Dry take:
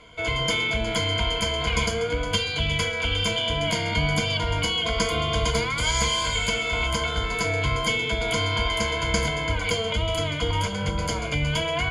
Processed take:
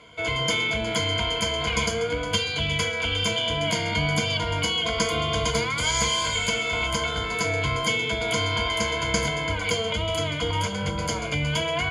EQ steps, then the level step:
high-pass filter 80 Hz
dynamic equaliser 6,300 Hz, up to +3 dB, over −44 dBFS, Q 5.1
0.0 dB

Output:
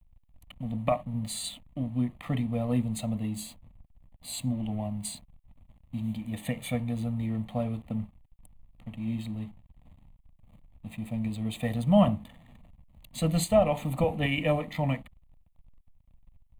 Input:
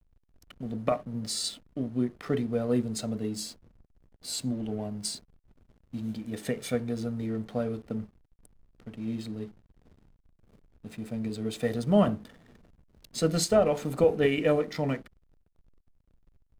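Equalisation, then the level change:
low-shelf EQ 180 Hz +3.5 dB
phaser with its sweep stopped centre 1,500 Hz, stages 6
+3.5 dB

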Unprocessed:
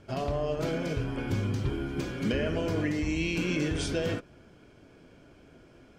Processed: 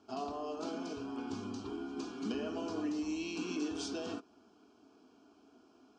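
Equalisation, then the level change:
high-frequency loss of the air 52 metres
loudspeaker in its box 260–7,500 Hz, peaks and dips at 350 Hz −8 dB, 490 Hz −3 dB, 940 Hz −5 dB, 1,600 Hz −8 dB, 3,400 Hz −5 dB
phaser with its sweep stopped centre 550 Hz, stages 6
+1.0 dB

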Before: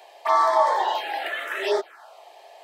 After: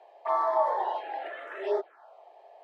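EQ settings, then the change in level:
resonant band-pass 530 Hz, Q 0.87
−4.0 dB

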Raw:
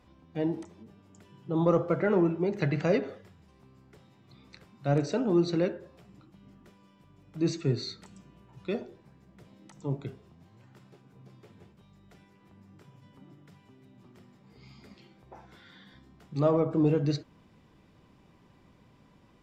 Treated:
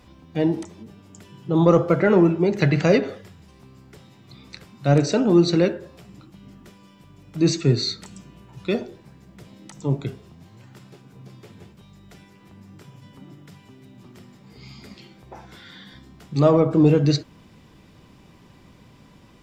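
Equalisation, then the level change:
low-shelf EQ 440 Hz +4 dB
high-shelf EQ 2,200 Hz +8.5 dB
+6.0 dB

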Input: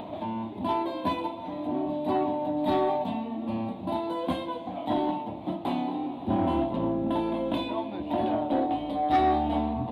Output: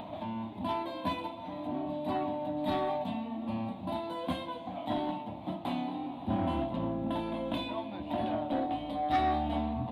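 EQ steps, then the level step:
parametric band 390 Hz −9.5 dB 0.74 octaves
dynamic equaliser 890 Hz, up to −4 dB, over −40 dBFS, Q 3
−2.0 dB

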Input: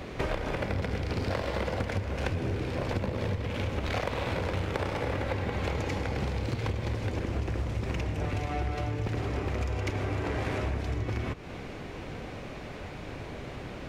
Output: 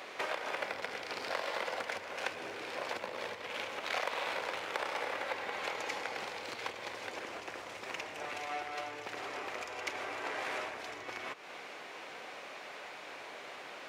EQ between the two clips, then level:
high-pass filter 730 Hz 12 dB per octave
0.0 dB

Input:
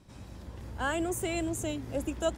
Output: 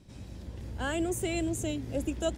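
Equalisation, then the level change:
parametric band 1,100 Hz −8.5 dB 1.4 octaves
high-shelf EQ 9,600 Hz −6 dB
+2.5 dB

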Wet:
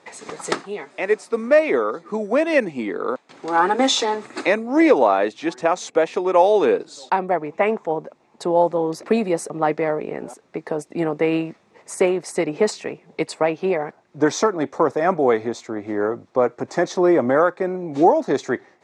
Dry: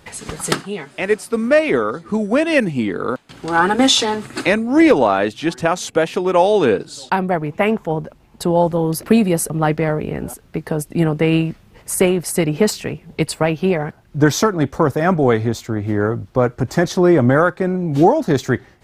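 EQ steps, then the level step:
loudspeaker in its box 360–7,900 Hz, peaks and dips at 1,500 Hz −6 dB, 3,000 Hz −9 dB, 4,700 Hz −4 dB
high-shelf EQ 4,900 Hz −6 dB
0.0 dB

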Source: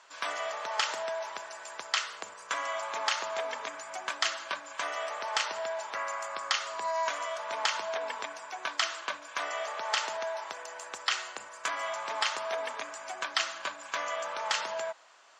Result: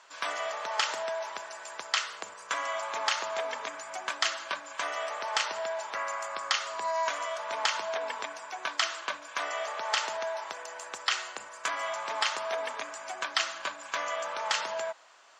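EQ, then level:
high-pass filter 51 Hz
+1.0 dB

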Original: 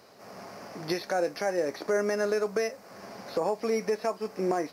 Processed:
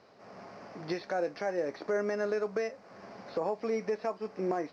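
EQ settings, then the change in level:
high-frequency loss of the air 140 metres
−3.5 dB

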